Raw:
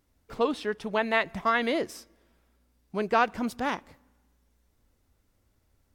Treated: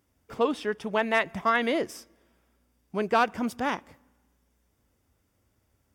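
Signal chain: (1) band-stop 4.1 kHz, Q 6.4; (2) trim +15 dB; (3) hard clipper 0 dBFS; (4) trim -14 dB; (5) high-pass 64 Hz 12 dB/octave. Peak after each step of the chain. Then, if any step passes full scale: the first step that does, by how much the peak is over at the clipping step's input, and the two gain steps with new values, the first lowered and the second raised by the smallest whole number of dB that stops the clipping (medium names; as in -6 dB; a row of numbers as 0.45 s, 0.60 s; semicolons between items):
-11.0 dBFS, +4.0 dBFS, 0.0 dBFS, -14.0 dBFS, -13.0 dBFS; step 2, 4.0 dB; step 2 +11 dB, step 4 -10 dB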